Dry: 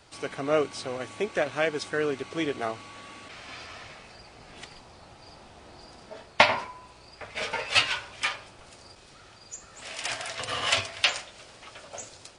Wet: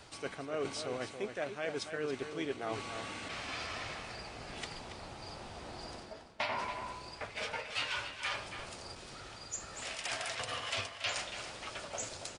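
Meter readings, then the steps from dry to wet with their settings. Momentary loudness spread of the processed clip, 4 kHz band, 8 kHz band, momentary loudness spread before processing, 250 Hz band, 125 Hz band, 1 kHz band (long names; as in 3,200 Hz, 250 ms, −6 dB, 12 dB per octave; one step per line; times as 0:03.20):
10 LU, −9.5 dB, −4.5 dB, 22 LU, −7.5 dB, −5.0 dB, −8.5 dB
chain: reversed playback
downward compressor 6 to 1, threshold −38 dBFS, peak gain reduction 24 dB
reversed playback
slap from a distant wall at 48 metres, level −8 dB
level +2.5 dB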